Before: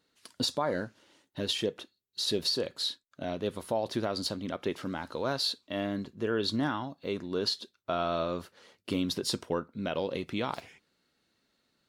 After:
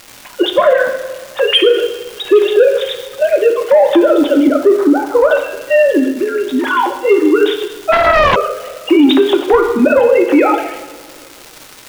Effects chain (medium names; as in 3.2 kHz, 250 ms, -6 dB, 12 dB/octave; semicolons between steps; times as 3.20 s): formants replaced by sine waves; 4.47–5.31 s: Bessel low-pass 1.1 kHz, order 8; 6.10–6.71 s: compression 4:1, threshold -41 dBFS, peak gain reduction 15 dB; comb of notches 220 Hz; saturation -24 dBFS, distortion -18 dB; crackle 580 per s -50 dBFS; two-slope reverb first 0.91 s, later 2.8 s, from -18 dB, DRR 4.5 dB; loudness maximiser +27.5 dB; 7.92–8.36 s: loudspeaker Doppler distortion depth 0.8 ms; trim -1 dB